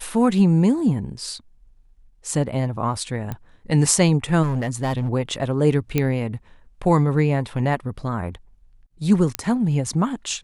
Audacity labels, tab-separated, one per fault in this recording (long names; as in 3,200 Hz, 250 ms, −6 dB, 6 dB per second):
3.320000	3.320000	click −16 dBFS
4.420000	5.090000	clipping −18 dBFS
5.980000	5.980000	click −7 dBFS
9.350000	9.350000	click −5 dBFS